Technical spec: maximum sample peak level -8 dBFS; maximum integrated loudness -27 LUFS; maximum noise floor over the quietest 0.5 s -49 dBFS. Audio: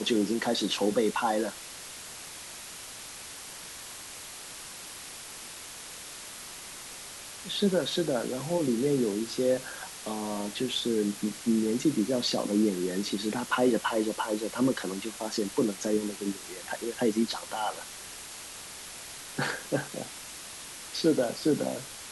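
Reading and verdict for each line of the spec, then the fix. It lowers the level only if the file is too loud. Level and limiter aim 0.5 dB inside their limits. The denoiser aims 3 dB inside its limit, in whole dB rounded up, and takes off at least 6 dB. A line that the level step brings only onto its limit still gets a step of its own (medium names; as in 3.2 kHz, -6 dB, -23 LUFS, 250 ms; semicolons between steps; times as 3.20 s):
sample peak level -13.0 dBFS: pass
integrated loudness -31.0 LUFS: pass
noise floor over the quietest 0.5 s -43 dBFS: fail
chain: noise reduction 9 dB, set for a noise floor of -43 dBFS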